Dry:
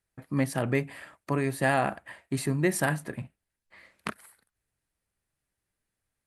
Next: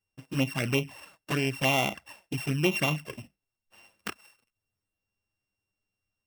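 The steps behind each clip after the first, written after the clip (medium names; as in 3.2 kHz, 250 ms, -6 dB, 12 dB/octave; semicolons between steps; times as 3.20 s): sorted samples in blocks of 16 samples; dynamic bell 1.8 kHz, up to +6 dB, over -40 dBFS, Q 0.85; touch-sensitive flanger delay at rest 9.8 ms, full sweep at -21 dBFS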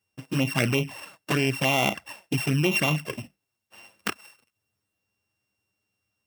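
high-pass 90 Hz; in parallel at -1 dB: compressor with a negative ratio -29 dBFS, ratio -0.5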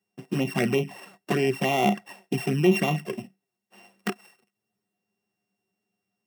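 high-pass 120 Hz 24 dB/octave; peaking EQ 430 Hz +3 dB 2.3 oct; small resonant body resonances 200/380/720/1900 Hz, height 14 dB, ringing for 90 ms; trim -5.5 dB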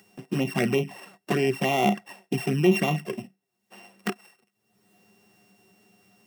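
upward compressor, threshold -42 dBFS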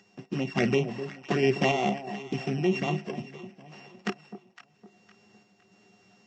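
random-step tremolo; echo whose repeats swap between lows and highs 255 ms, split 880 Hz, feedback 59%, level -10.5 dB; trim +1 dB; Vorbis 48 kbps 16 kHz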